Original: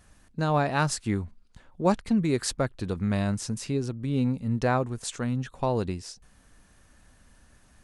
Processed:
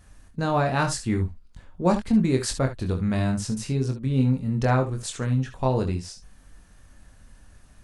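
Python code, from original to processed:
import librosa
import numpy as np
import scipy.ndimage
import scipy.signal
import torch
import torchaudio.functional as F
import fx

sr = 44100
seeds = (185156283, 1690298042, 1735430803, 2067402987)

p1 = fx.low_shelf(x, sr, hz=110.0, db=8.0)
y = p1 + fx.room_early_taps(p1, sr, ms=(23, 64, 74), db=(-5.0, -13.0, -13.0), dry=0)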